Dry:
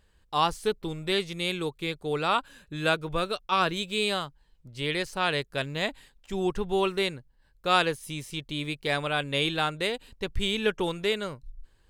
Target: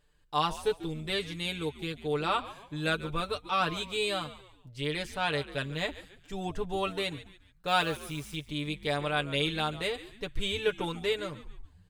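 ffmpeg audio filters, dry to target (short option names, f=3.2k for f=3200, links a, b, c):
-filter_complex "[0:a]aecho=1:1:6.8:0.71,asettb=1/sr,asplit=3[a][b][c];[a]atrim=end=7.684[d];[b]atrim=start=7.68:end=8.36,asetpts=PTS-STARTPTS,afade=t=in:d=0.004:c=qsin,afade=t=out:st=0.676:d=0.004:c=qsin,acrusher=bits=8:dc=4:mix=0:aa=0.000001[e];[c]atrim=start=8.356[f];[d][e]acrossfade=d=0.004:c1=hsin:c2=qsin[g];[g][f]acrossfade=d=0.004:c1=qsin:c2=hsin,asplit=4[h][i][j][k];[i]adelay=142,afreqshift=-100,volume=-15.5dB[l];[j]adelay=284,afreqshift=-200,volume=-23.7dB[m];[k]adelay=426,afreqshift=-300,volume=-31.9dB[n];[h][l][m][n]amix=inputs=4:normalize=0,volume=-5.5dB"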